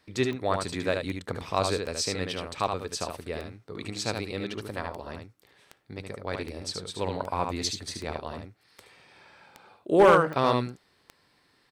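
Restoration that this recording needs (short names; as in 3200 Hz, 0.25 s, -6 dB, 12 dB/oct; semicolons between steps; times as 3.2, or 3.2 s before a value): clip repair -11 dBFS; de-click; inverse comb 74 ms -5 dB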